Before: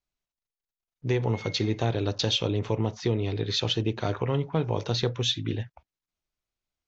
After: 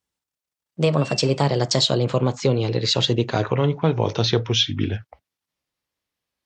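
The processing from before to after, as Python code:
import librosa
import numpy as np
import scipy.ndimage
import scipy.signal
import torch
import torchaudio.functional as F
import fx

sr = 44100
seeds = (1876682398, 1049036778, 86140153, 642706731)

y = fx.speed_glide(x, sr, from_pct=136, to_pct=77)
y = scipy.signal.sosfilt(scipy.signal.butter(2, 84.0, 'highpass', fs=sr, output='sos'), y)
y = y * librosa.db_to_amplitude(7.0)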